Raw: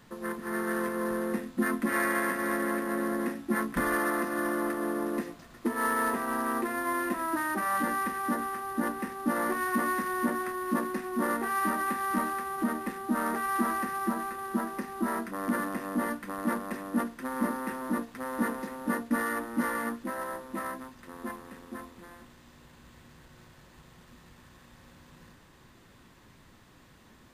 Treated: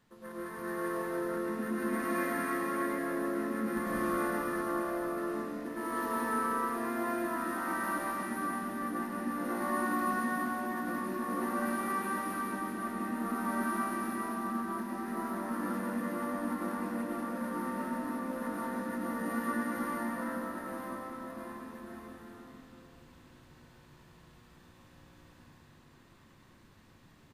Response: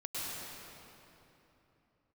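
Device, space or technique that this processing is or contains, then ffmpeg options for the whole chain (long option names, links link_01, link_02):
cave: -filter_complex "[0:a]aecho=1:1:189:0.335[link_01];[1:a]atrim=start_sample=2205[link_02];[link_01][link_02]afir=irnorm=-1:irlink=0,volume=-8dB"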